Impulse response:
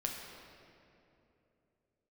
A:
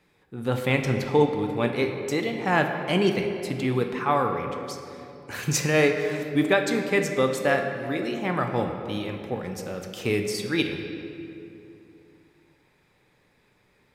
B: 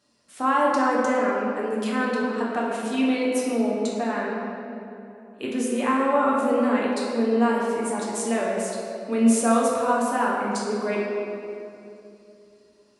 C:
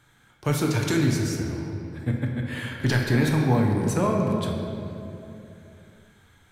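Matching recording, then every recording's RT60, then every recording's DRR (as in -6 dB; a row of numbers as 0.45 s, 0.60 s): C; 3.0 s, 2.9 s, 2.9 s; 4.0 dB, -5.0 dB, 0.0 dB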